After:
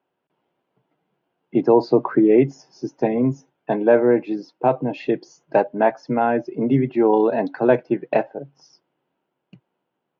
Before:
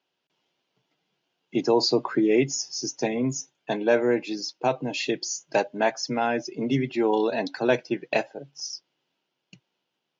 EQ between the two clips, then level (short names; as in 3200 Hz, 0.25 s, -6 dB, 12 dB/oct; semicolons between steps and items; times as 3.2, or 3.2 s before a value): LPF 1300 Hz 12 dB/oct; +6.5 dB